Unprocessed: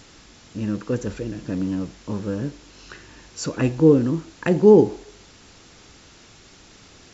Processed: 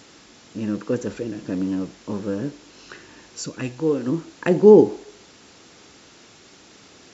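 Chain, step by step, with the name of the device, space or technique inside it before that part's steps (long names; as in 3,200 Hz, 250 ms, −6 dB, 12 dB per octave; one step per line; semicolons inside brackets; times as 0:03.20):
0:03.41–0:04.06: parametric band 910 Hz → 140 Hz −11 dB 3 octaves
filter by subtraction (in parallel: low-pass filter 310 Hz 12 dB per octave + polarity inversion)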